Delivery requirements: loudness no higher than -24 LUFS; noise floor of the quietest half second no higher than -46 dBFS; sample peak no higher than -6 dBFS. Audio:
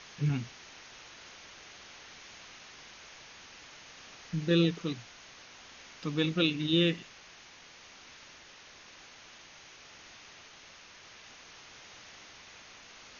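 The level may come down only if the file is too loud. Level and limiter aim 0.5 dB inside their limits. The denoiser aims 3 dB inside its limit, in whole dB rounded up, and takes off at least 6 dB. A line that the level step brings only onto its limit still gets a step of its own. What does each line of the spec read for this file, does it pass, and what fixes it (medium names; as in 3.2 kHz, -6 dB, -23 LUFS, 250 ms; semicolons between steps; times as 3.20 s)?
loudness -30.5 LUFS: pass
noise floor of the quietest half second -54 dBFS: pass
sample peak -14.5 dBFS: pass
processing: none needed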